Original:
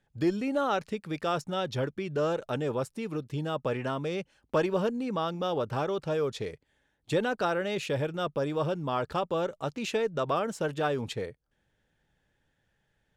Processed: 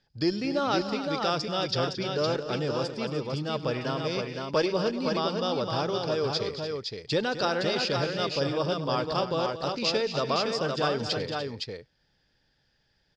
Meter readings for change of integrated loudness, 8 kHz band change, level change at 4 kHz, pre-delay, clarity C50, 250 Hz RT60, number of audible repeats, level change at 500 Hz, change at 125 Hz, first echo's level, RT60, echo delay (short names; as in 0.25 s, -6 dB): +2.5 dB, +4.0 dB, +10.0 dB, none, none, none, 4, +2.0 dB, +1.5 dB, -20.0 dB, none, 99 ms